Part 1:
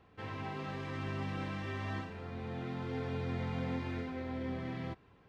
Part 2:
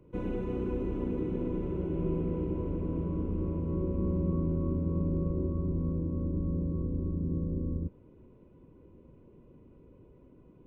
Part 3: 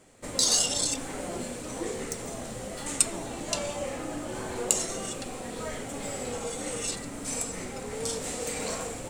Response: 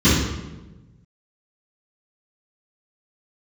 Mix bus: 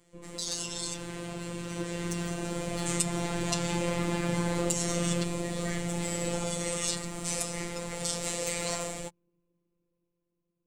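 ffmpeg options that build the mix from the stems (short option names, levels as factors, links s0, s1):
-filter_complex "[0:a]asoftclip=type=hard:threshold=0.0133,adelay=300,volume=0.794[s0];[1:a]volume=0.299,afade=t=out:st=6.33:d=0.39:silence=0.223872[s1];[2:a]highshelf=f=5300:g=-11.5,bandreject=f=1500:w=11,volume=0.447[s2];[s0][s2]amix=inputs=2:normalize=0,equalizer=f=100:t=o:w=0.45:g=15,alimiter=level_in=1.33:limit=0.0631:level=0:latency=1:release=182,volume=0.75,volume=1[s3];[s1][s3]amix=inputs=2:normalize=0,highshelf=f=2500:g=11,dynaudnorm=f=460:g=9:m=3.16,afftfilt=real='hypot(re,im)*cos(PI*b)':imag='0':win_size=1024:overlap=0.75"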